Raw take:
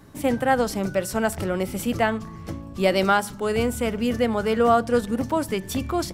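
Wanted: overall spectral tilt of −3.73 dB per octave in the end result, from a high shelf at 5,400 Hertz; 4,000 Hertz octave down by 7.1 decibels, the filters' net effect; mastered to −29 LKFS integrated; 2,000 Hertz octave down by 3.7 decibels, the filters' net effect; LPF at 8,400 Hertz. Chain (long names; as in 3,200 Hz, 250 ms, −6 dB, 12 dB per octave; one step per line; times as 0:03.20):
low-pass filter 8,400 Hz
parametric band 2,000 Hz −3 dB
parametric band 4,000 Hz −6 dB
high-shelf EQ 5,400 Hz −7 dB
level −5 dB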